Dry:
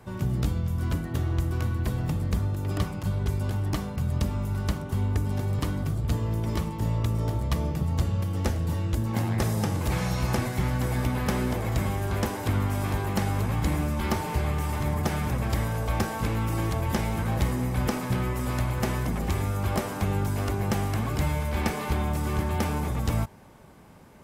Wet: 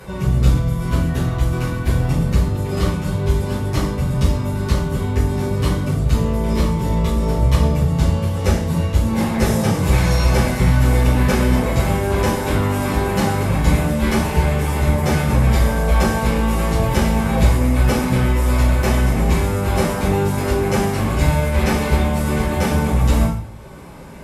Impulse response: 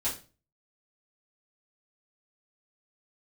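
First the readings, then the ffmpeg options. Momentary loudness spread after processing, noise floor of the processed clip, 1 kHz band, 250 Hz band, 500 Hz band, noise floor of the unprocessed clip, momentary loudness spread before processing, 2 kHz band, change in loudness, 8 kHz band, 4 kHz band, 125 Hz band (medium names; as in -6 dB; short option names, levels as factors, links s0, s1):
4 LU, -24 dBFS, +9.0 dB, +10.0 dB, +11.5 dB, -35 dBFS, 2 LU, +10.0 dB, +9.5 dB, +9.5 dB, +9.5 dB, +8.5 dB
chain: -filter_complex "[0:a]acompressor=mode=upward:threshold=0.00891:ratio=2.5[s0];[1:a]atrim=start_sample=2205,asetrate=26460,aresample=44100[s1];[s0][s1]afir=irnorm=-1:irlink=0"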